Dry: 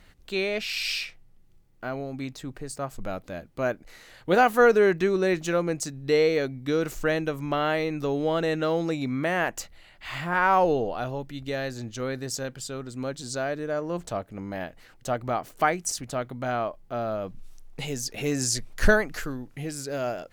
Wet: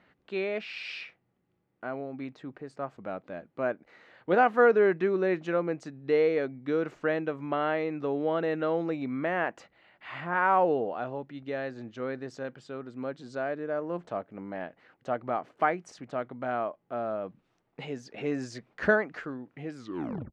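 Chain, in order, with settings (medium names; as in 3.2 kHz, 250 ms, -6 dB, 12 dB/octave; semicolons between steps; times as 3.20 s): tape stop on the ending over 0.58 s; band-pass 190–2100 Hz; trim -2.5 dB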